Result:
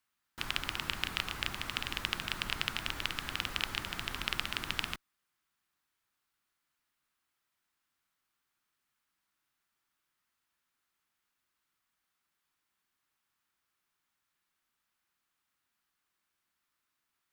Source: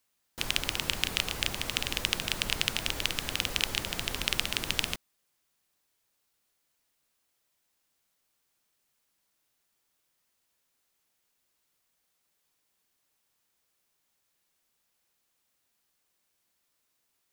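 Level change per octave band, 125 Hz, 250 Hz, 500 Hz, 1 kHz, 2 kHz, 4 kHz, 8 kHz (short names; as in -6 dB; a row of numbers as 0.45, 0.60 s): -5.0, -5.0, -8.0, -1.0, -3.5, -6.0, -11.0 dB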